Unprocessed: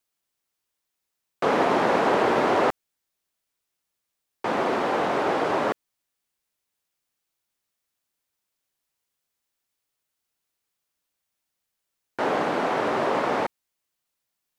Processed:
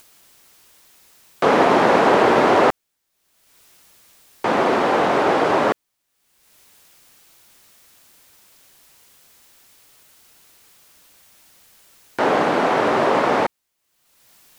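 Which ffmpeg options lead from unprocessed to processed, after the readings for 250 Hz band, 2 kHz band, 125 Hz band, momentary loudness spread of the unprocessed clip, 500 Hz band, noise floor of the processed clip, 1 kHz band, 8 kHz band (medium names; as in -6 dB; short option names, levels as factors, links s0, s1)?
+6.5 dB, +6.5 dB, +6.5 dB, 8 LU, +6.5 dB, -75 dBFS, +6.5 dB, +7.0 dB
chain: -af "acompressor=mode=upward:threshold=0.01:ratio=2.5,volume=2.11"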